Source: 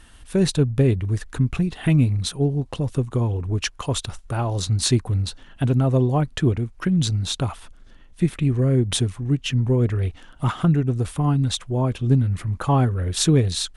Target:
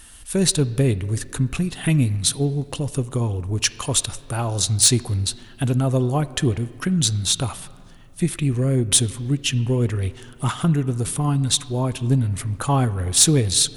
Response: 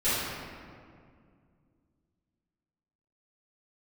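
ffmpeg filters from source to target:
-filter_complex "[0:a]aemphasis=mode=production:type=75fm,asoftclip=type=tanh:threshold=-3.5dB,asplit=2[link_01][link_02];[1:a]atrim=start_sample=2205,lowpass=4000,lowshelf=frequency=200:gain=-12[link_03];[link_02][link_03]afir=irnorm=-1:irlink=0,volume=-27dB[link_04];[link_01][link_04]amix=inputs=2:normalize=0"

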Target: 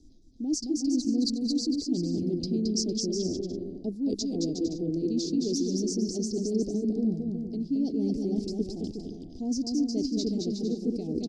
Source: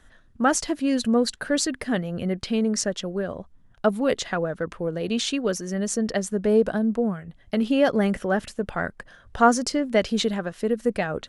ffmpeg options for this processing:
ffmpeg -i in.wav -af "firequalizer=gain_entry='entry(200,0);entry(300,13);entry(570,-20);entry(1800,13);entry(3000,-30);entry(4800,0);entry(9500,-24)':delay=0.05:min_phase=1,areverse,acompressor=threshold=-26dB:ratio=6,areverse,asuperstop=centerf=1500:order=12:qfactor=0.66,tiltshelf=frequency=1100:gain=-4,aecho=1:1:220|363|456|516.4|555.6:0.631|0.398|0.251|0.158|0.1,volume=3dB" out.wav

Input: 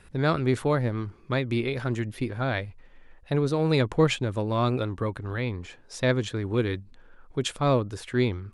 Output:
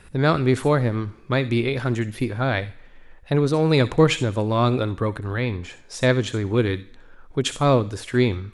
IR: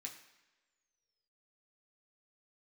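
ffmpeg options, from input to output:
-filter_complex "[0:a]asplit=2[link_01][link_02];[1:a]atrim=start_sample=2205,highshelf=frequency=4300:gain=11.5,adelay=62[link_03];[link_02][link_03]afir=irnorm=-1:irlink=0,volume=-14dB[link_04];[link_01][link_04]amix=inputs=2:normalize=0,volume=5dB"

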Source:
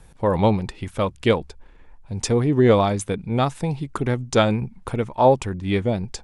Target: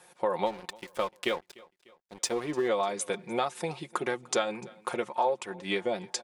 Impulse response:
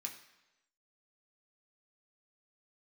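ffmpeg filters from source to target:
-filter_complex "[0:a]highpass=470,aecho=1:1:5.6:0.59,acompressor=threshold=-26dB:ratio=4,asplit=3[link_01][link_02][link_03];[link_01]afade=type=out:start_time=0.45:duration=0.02[link_04];[link_02]aeval=exprs='sgn(val(0))*max(abs(val(0))-0.0075,0)':channel_layout=same,afade=type=in:start_time=0.45:duration=0.02,afade=type=out:start_time=2.67:duration=0.02[link_05];[link_03]afade=type=in:start_time=2.67:duration=0.02[link_06];[link_04][link_05][link_06]amix=inputs=3:normalize=0,aecho=1:1:298|596|894:0.0668|0.0341|0.0174"

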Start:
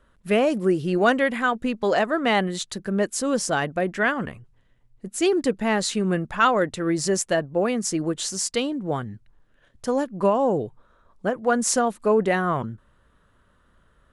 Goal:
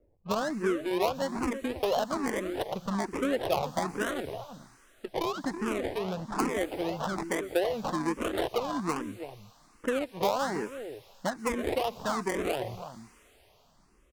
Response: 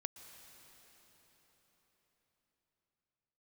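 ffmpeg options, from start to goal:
-filter_complex "[0:a]acompressor=threshold=-26dB:ratio=10,acrusher=samples=26:mix=1:aa=0.000001:lfo=1:lforange=15.6:lforate=1.4,bass=frequency=250:gain=-9,treble=frequency=4000:gain=-6,asplit=2[link_01][link_02];[link_02]adelay=326.5,volume=-10dB,highshelf=frequency=4000:gain=-7.35[link_03];[link_01][link_03]amix=inputs=2:normalize=0,adynamicsmooth=sensitivity=3.5:basefreq=520,asplit=2[link_04][link_05];[link_05]aderivative[link_06];[1:a]atrim=start_sample=2205,highshelf=frequency=8800:gain=10[link_07];[link_06][link_07]afir=irnorm=-1:irlink=0,volume=4dB[link_08];[link_04][link_08]amix=inputs=2:normalize=0,asplit=2[link_09][link_10];[link_10]afreqshift=1.2[link_11];[link_09][link_11]amix=inputs=2:normalize=1,volume=5dB"

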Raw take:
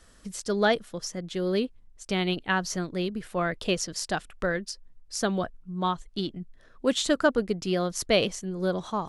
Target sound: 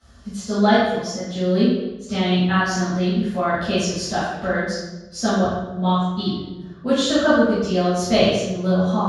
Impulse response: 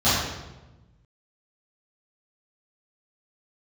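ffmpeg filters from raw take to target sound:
-filter_complex "[1:a]atrim=start_sample=2205[link_01];[0:a][link_01]afir=irnorm=-1:irlink=0,volume=-13dB"

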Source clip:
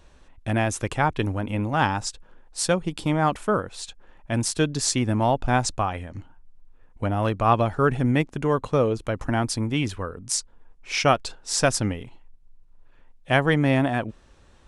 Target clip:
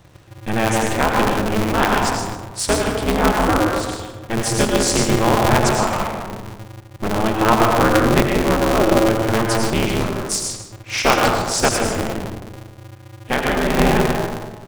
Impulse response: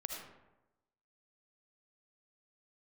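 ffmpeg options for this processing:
-filter_complex "[1:a]atrim=start_sample=2205,asetrate=31311,aresample=44100[link_01];[0:a][link_01]afir=irnorm=-1:irlink=0,asettb=1/sr,asplit=3[link_02][link_03][link_04];[link_02]atrim=end=11.684[link_05];[link_03]atrim=start=11.68:end=13.78,asetpts=PTS-STARTPTS,afade=type=in:duration=0.004:curve=qsin,afade=type=out:start_time=2.096:duration=0.004:curve=qsin,acompressor=threshold=-21dB:ratio=3[link_06];[link_04]atrim=start=13.776[link_07];[link_05][link_06]acrossfade=duration=0.004:curve1=hsin:curve2=qsin[link_08];[link_08][link_07]acrossfade=duration=0.004:curve1=qsin:curve2=hsin,aecho=1:1:154:0.237,aeval=exprs='val(0)*sgn(sin(2*PI*110*n/s))':channel_layout=same,volume=4.5dB"

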